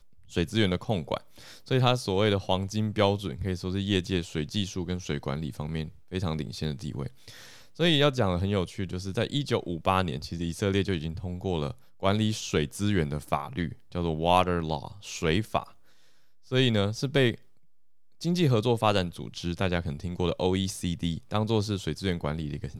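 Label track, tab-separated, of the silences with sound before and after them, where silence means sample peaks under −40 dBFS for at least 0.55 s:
15.690000	16.510000	silence
17.350000	18.210000	silence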